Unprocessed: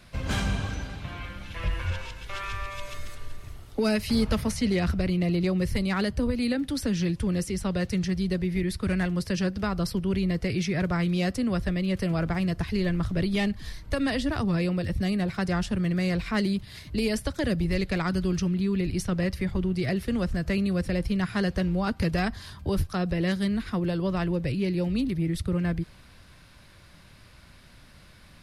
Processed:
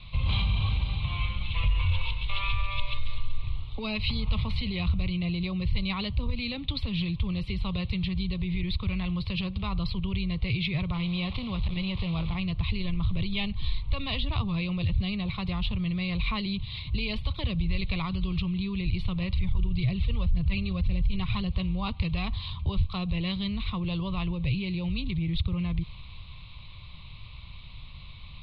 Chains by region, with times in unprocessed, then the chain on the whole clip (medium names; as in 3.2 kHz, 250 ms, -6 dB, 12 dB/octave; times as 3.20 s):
10.94–12.35 s: one-bit delta coder 32 kbps, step -36.5 dBFS + transformer saturation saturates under 230 Hz
19.36–21.52 s: bass shelf 120 Hz +9 dB + phaser 1.9 Hz, delay 2.6 ms, feedback 41%
whole clip: tilt EQ -2 dB/octave; peak limiter -20 dBFS; FFT filter 130 Hz 0 dB, 270 Hz -14 dB, 690 Hz -9 dB, 1.1 kHz +5 dB, 1.6 kHz -20 dB, 2.3 kHz +8 dB, 4 kHz +12 dB, 5.9 kHz -28 dB; trim +2 dB